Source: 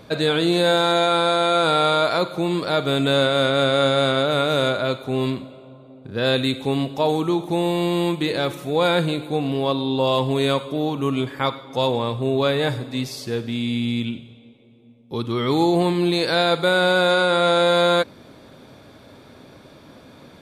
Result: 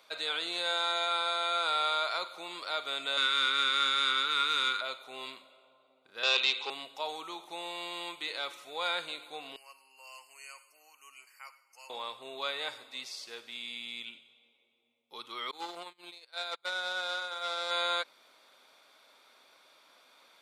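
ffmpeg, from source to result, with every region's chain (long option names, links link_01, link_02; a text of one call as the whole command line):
ffmpeg -i in.wav -filter_complex "[0:a]asettb=1/sr,asplit=3[link_01][link_02][link_03];[link_01]atrim=end=3.174[link_04];[link_02]atrim=start=3.17:end=4.81,asetpts=PTS-STARTPTS,afade=type=in:duration=0.004:curve=qsin,afade=type=out:start_time=1.636:duration=0.004:curve=qsin,acontrast=38,asuperstop=centerf=650:order=4:qfactor=1.1[link_05];[link_03]atrim=start=4.806[link_06];[link_04][link_05]acrossfade=duration=0.004:curve1=hsin:curve2=qsin[link_07];[link_07][link_06]acrossfade=duration=0.004:curve1=qsin:curve2=hsin,asettb=1/sr,asplit=3[link_08][link_09][link_10];[link_08]atrim=end=6.234[link_11];[link_09]atrim=start=6.23:end=6.7,asetpts=PTS-STARTPTS,afade=type=in:duration=0.004:curve=qsin,afade=type=out:start_time=0.466:duration=0.004:curve=qsin,acontrast=73,volume=9.5dB,asoftclip=hard,volume=-9.5dB,highpass=frequency=340:width=0.5412,highpass=frequency=340:width=1.3066,equalizer=frequency=380:width_type=q:width=4:gain=4,equalizer=frequency=630:width_type=q:width=4:gain=-5,equalizer=frequency=1000:width_type=q:width=4:gain=7,equalizer=frequency=1700:width_type=q:width=4:gain=-5,equalizer=frequency=2700:width_type=q:width=4:gain=7,equalizer=frequency=5000:width_type=q:width=4:gain=7,lowpass=frequency=6100:width=0.5412,lowpass=frequency=6100:width=1.3066[link_12];[link_10]atrim=start=6.696[link_13];[link_11][link_12]acrossfade=duration=0.004:curve1=hsin:curve2=qsin[link_14];[link_14][link_13]acrossfade=duration=0.004:curve1=qsin:curve2=hsin,asettb=1/sr,asplit=3[link_15][link_16][link_17];[link_15]atrim=end=9.564[link_18];[link_16]atrim=start=9.56:end=11.9,asetpts=PTS-STARTPTS,afade=type=in:duration=0.004:curve=qsin,afade=type=out:start_time=2.336:duration=0.004:curve=qsin,asuperstop=centerf=3600:order=20:qfactor=2.8,aderivative[link_19];[link_17]atrim=start=11.896[link_20];[link_18][link_19]acrossfade=duration=0.004:curve1=hsin:curve2=qsin[link_21];[link_21][link_20]acrossfade=duration=0.004:curve1=qsin:curve2=hsin,asettb=1/sr,asplit=3[link_22][link_23][link_24];[link_22]atrim=end=15.514[link_25];[link_23]atrim=start=15.51:end=17.71,asetpts=PTS-STARTPTS,afade=type=in:duration=0.004:curve=qsin,afade=type=out:start_time=2.196:duration=0.004:curve=qsin,agate=range=-32dB:threshold=-18dB:ratio=16:release=100:detection=peak,aeval=exprs='clip(val(0),-1,0.119)':channel_layout=same[link_26];[link_24]atrim=start=17.706[link_27];[link_25][link_26]acrossfade=duration=0.004:curve1=hsin:curve2=qsin[link_28];[link_28][link_27]acrossfade=duration=0.004:curve1=qsin:curve2=hsin,highpass=1100,bandreject=frequency=1700:width=10,acrossover=split=8600[link_29][link_30];[link_30]acompressor=threshold=-58dB:ratio=4:attack=1:release=60[link_31];[link_29][link_31]amix=inputs=2:normalize=0,volume=-7.5dB" out.wav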